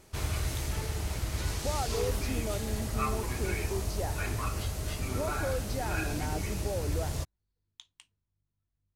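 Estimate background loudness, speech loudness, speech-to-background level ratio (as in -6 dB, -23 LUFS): -34.0 LUFS, -38.5 LUFS, -4.5 dB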